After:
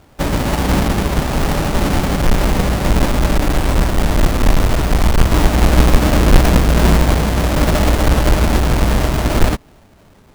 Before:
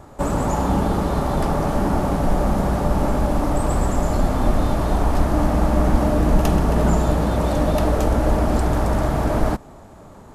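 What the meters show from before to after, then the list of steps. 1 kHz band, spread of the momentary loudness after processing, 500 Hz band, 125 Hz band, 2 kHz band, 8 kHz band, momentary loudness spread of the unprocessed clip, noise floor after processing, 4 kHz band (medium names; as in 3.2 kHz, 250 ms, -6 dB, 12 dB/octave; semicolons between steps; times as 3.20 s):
+2.5 dB, 5 LU, +2.5 dB, +5.5 dB, +10.5 dB, +9.5 dB, 3 LU, -47 dBFS, +13.5 dB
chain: square wave that keeps the level; upward expansion 1.5:1, over -31 dBFS; trim +3.5 dB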